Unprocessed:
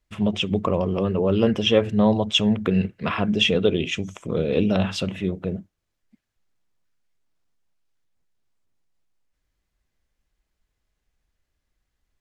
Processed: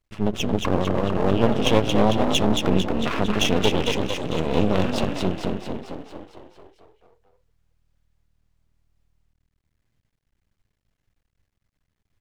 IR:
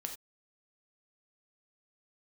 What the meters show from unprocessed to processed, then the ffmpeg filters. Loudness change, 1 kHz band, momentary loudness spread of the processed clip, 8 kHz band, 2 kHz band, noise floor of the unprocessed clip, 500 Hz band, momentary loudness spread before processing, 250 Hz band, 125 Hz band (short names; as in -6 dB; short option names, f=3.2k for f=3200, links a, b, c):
-0.5 dB, +5.0 dB, 10 LU, +6.5 dB, 0.0 dB, -79 dBFS, 0.0 dB, 9 LU, -0.5 dB, 0.0 dB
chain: -filter_complex "[0:a]bass=f=250:g=0,treble=f=4k:g=-3,asplit=9[a][b][c][d][e][f][g][h][i];[b]adelay=225,afreqshift=39,volume=-4dB[j];[c]adelay=450,afreqshift=78,volume=-8.6dB[k];[d]adelay=675,afreqshift=117,volume=-13.2dB[l];[e]adelay=900,afreqshift=156,volume=-17.7dB[m];[f]adelay=1125,afreqshift=195,volume=-22.3dB[n];[g]adelay=1350,afreqshift=234,volume=-26.9dB[o];[h]adelay=1575,afreqshift=273,volume=-31.5dB[p];[i]adelay=1800,afreqshift=312,volume=-36.1dB[q];[a][j][k][l][m][n][o][p][q]amix=inputs=9:normalize=0,aeval=exprs='max(val(0),0)':c=same,volume=2dB"